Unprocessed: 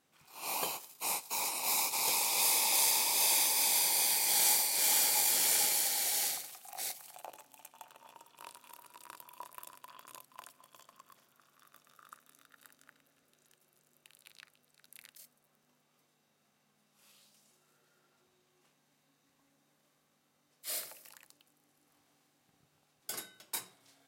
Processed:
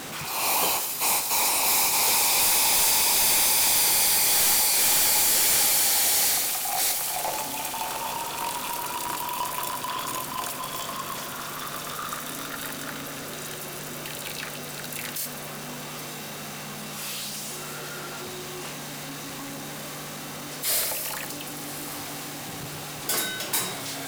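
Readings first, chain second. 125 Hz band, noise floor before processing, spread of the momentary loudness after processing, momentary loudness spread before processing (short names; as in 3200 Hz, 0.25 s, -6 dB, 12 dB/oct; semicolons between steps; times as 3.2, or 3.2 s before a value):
n/a, -75 dBFS, 17 LU, 16 LU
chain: one-sided fold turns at -26.5 dBFS; power-law curve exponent 0.35; diffused feedback echo 1.083 s, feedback 45%, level -14 dB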